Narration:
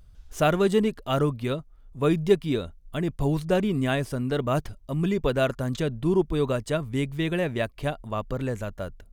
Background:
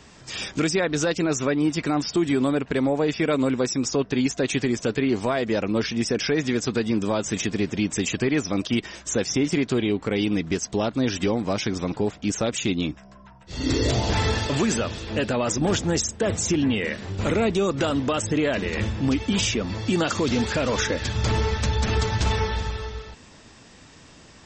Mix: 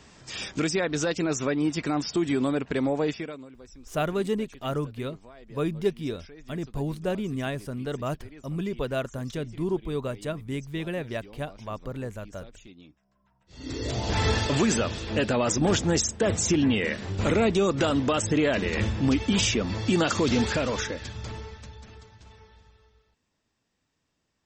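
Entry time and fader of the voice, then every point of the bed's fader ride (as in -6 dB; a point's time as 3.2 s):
3.55 s, -5.5 dB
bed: 3.08 s -3.5 dB
3.49 s -25.5 dB
13.01 s -25.5 dB
14.29 s -0.5 dB
20.48 s -0.5 dB
22.16 s -28.5 dB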